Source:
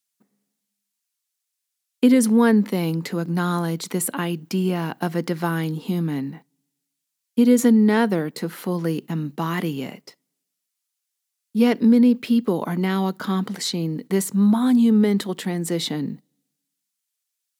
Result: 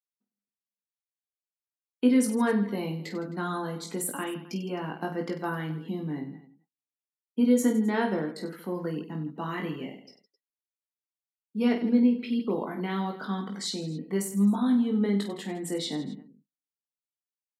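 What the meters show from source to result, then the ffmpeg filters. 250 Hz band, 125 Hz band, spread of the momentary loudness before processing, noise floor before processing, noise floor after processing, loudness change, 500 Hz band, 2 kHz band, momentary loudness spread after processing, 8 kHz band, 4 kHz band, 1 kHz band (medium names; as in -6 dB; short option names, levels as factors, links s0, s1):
-7.5 dB, -9.5 dB, 12 LU, -81 dBFS, under -85 dBFS, -7.5 dB, -7.0 dB, -6.5 dB, 12 LU, -7.0 dB, -7.0 dB, -6.0 dB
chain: -af "highpass=170,afftdn=nr=19:nf=-39,aecho=1:1:20|50|95|162.5|263.8:0.631|0.398|0.251|0.158|0.1,volume=0.376"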